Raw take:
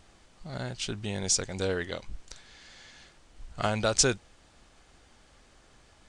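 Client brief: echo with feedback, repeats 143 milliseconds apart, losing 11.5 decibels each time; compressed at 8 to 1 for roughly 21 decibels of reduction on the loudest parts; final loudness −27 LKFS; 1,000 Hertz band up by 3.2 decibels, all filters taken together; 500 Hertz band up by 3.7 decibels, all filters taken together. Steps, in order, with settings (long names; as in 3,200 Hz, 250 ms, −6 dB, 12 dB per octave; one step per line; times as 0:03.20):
parametric band 500 Hz +3.5 dB
parametric band 1,000 Hz +3.5 dB
downward compressor 8 to 1, threshold −41 dBFS
repeating echo 143 ms, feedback 27%, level −11.5 dB
level +19 dB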